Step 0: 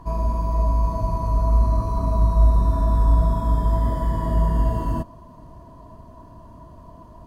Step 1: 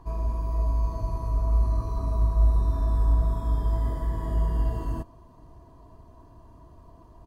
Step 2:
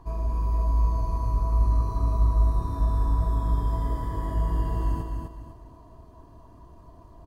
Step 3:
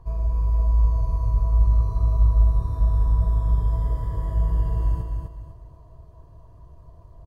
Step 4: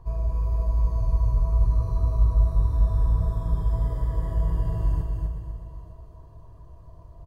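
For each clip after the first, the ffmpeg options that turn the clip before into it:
ffmpeg -i in.wav -af "aecho=1:1:2.5:0.41,volume=-7dB" out.wav
ffmpeg -i in.wav -af "aecho=1:1:251|502|753|1004:0.596|0.197|0.0649|0.0214" out.wav
ffmpeg -i in.wav -af "firequalizer=gain_entry='entry(150,0);entry(230,-17);entry(500,-2);entry(750,-9)':delay=0.05:min_phase=1,volume=4dB" out.wav
ffmpeg -i in.wav -af "aecho=1:1:44|373|899:0.335|0.251|0.119" out.wav

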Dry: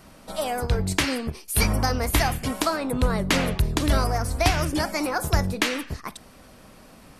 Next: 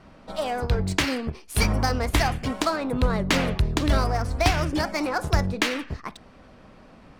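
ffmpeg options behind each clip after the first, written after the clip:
ffmpeg -i in.wav -af "adynamicsmooth=sensitivity=5.5:basefreq=3500" out.wav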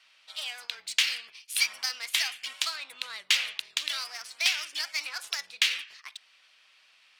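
ffmpeg -i in.wav -af "highpass=frequency=2900:width_type=q:width=1.7" out.wav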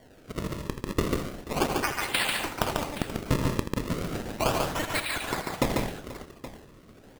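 ffmpeg -i in.wav -filter_complex "[0:a]acompressor=threshold=-41dB:ratio=1.5,acrusher=samples=34:mix=1:aa=0.000001:lfo=1:lforange=54.4:lforate=0.35,asplit=2[link_01][link_02];[link_02]aecho=0:1:81|143|172|211|483|822:0.299|0.668|0.188|0.224|0.133|0.168[link_03];[link_01][link_03]amix=inputs=2:normalize=0,volume=6.5dB" out.wav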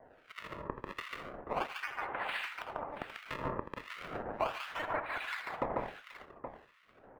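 ffmpeg -i in.wav -filter_complex "[0:a]acrossover=split=540 2800:gain=0.178 1 0.0708[link_01][link_02][link_03];[link_01][link_02][link_03]amix=inputs=3:normalize=0,alimiter=limit=-21dB:level=0:latency=1:release=479,acrossover=split=1500[link_04][link_05];[link_04]aeval=exprs='val(0)*(1-1/2+1/2*cos(2*PI*1.4*n/s))':channel_layout=same[link_06];[link_05]aeval=exprs='val(0)*(1-1/2-1/2*cos(2*PI*1.4*n/s))':channel_layout=same[link_07];[link_06][link_07]amix=inputs=2:normalize=0,volume=4dB" out.wav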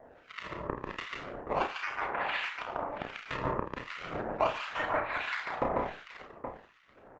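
ffmpeg -i in.wav -af "aresample=16000,aresample=44100,aecho=1:1:32|49:0.501|0.282,volume=4.5dB" -ar 48000 -c:a libopus -b:a 16k out.opus

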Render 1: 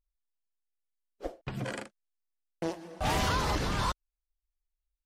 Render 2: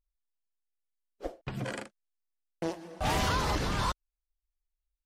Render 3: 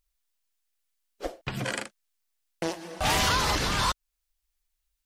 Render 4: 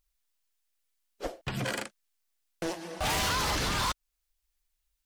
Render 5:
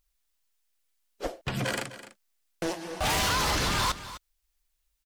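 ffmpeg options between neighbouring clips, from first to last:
ffmpeg -i in.wav -af anull out.wav
ffmpeg -i in.wav -filter_complex "[0:a]tiltshelf=frequency=1200:gain=-4.5,asplit=2[link_01][link_02];[link_02]acompressor=threshold=-41dB:ratio=6,volume=-1.5dB[link_03];[link_01][link_03]amix=inputs=2:normalize=0,volume=3.5dB" out.wav
ffmpeg -i in.wav -af "asoftclip=type=hard:threshold=-26.5dB" out.wav
ffmpeg -i in.wav -af "aecho=1:1:254:0.188,volume=2.5dB" out.wav

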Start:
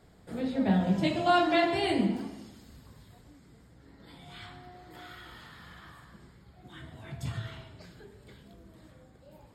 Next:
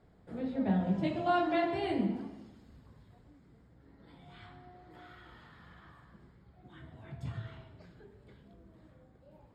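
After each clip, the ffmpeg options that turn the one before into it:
ffmpeg -i in.wav -af "lowpass=frequency=1600:poles=1,volume=-4dB" out.wav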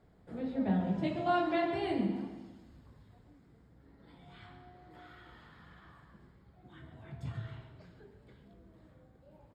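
ffmpeg -i in.wav -af "aecho=1:1:137|274|411|548|685:0.224|0.107|0.0516|0.0248|0.0119,volume=-1dB" out.wav

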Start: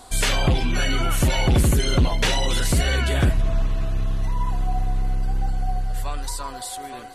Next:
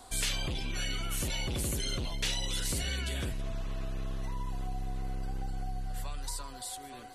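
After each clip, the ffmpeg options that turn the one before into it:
ffmpeg -i in.wav -filter_complex "[0:a]acrossover=split=300|2400[link_01][link_02][link_03];[link_01]asoftclip=type=tanh:threshold=-26dB[link_04];[link_02]acompressor=threshold=-38dB:ratio=6[link_05];[link_04][link_05][link_03]amix=inputs=3:normalize=0,volume=-7dB" out.wav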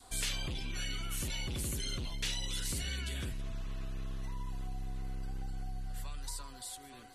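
ffmpeg -i in.wav -af "adynamicequalizer=threshold=0.002:dfrequency=620:dqfactor=1.1:tfrequency=620:tqfactor=1.1:attack=5:release=100:ratio=0.375:range=3:mode=cutabove:tftype=bell,volume=-3.5dB" out.wav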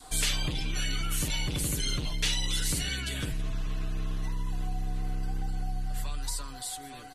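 ffmpeg -i in.wav -af "aecho=1:1:6.6:0.47,volume=6.5dB" out.wav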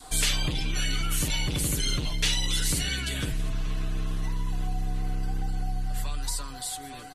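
ffmpeg -i in.wav -af "aecho=1:1:710|1420|2130:0.0631|0.0334|0.0177,volume=3dB" out.wav

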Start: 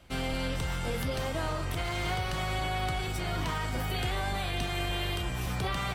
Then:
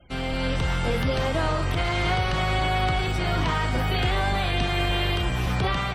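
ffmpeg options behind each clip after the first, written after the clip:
ffmpeg -i in.wav -filter_complex "[0:a]acrossover=split=4700[link_01][link_02];[link_02]acompressor=threshold=-53dB:ratio=4:attack=1:release=60[link_03];[link_01][link_03]amix=inputs=2:normalize=0,afftfilt=real='re*gte(hypot(re,im),0.00158)':imag='im*gte(hypot(re,im),0.00158)':win_size=1024:overlap=0.75,dynaudnorm=framelen=170:gausssize=5:maxgain=5dB,volume=3dB" out.wav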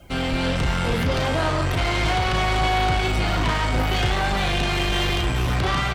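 ffmpeg -i in.wav -filter_complex "[0:a]acrusher=bits=10:mix=0:aa=0.000001,asoftclip=type=tanh:threshold=-25.5dB,asplit=2[link_01][link_02];[link_02]adelay=35,volume=-7dB[link_03];[link_01][link_03]amix=inputs=2:normalize=0,volume=7dB" out.wav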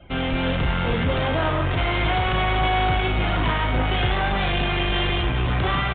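ffmpeg -i in.wav -af "aresample=8000,aresample=44100" out.wav

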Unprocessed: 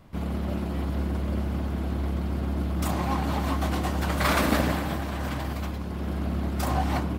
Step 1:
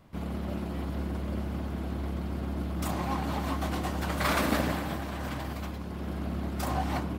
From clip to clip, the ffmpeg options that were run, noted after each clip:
ffmpeg -i in.wav -af "lowshelf=frequency=64:gain=-5.5,volume=-3.5dB" out.wav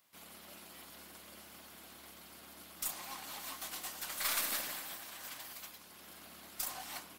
ffmpeg -i in.wav -af "aderivative,aeval=exprs='0.0668*(cos(1*acos(clip(val(0)/0.0668,-1,1)))-cos(1*PI/2))+0.00422*(cos(4*acos(clip(val(0)/0.0668,-1,1)))-cos(4*PI/2))':channel_layout=same,volume=3dB" out.wav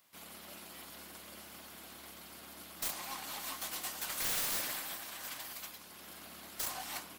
ffmpeg -i in.wav -af "aeval=exprs='(mod(37.6*val(0)+1,2)-1)/37.6':channel_layout=same,volume=3dB" out.wav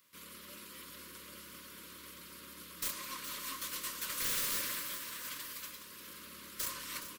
ffmpeg -i in.wav -filter_complex "[0:a]asuperstop=centerf=750:order=20:qfactor=2.2,asplit=2[link_01][link_02];[link_02]aecho=0:1:419|838|1257|1676|2095:0.266|0.12|0.0539|0.0242|0.0109[link_03];[link_01][link_03]amix=inputs=2:normalize=0" out.wav

